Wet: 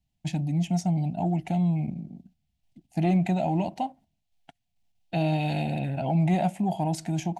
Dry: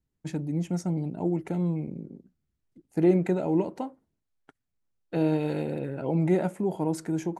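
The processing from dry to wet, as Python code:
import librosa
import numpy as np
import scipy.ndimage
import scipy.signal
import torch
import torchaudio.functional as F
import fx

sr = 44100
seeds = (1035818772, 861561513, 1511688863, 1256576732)

p1 = fx.curve_eq(x, sr, hz=(210.0, 470.0, 710.0, 1200.0, 2800.0, 9700.0), db=(0, -20, 8, -15, 6, -3))
p2 = fx.level_steps(p1, sr, step_db=19)
p3 = p1 + (p2 * librosa.db_to_amplitude(0.0))
p4 = 10.0 ** (-12.0 / 20.0) * np.tanh(p3 / 10.0 ** (-12.0 / 20.0))
y = p4 * librosa.db_to_amplitude(2.0)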